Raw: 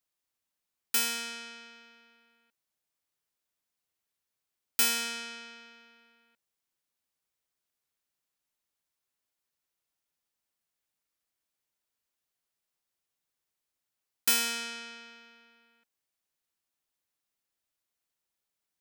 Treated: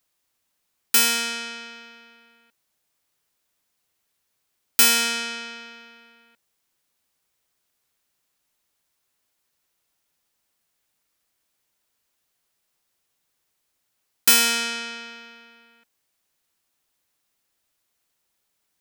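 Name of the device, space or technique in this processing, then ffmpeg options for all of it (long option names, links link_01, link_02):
parallel distortion: -filter_complex "[0:a]asplit=2[link_01][link_02];[link_02]asoftclip=type=hard:threshold=-27dB,volume=-7dB[link_03];[link_01][link_03]amix=inputs=2:normalize=0,volume=8dB"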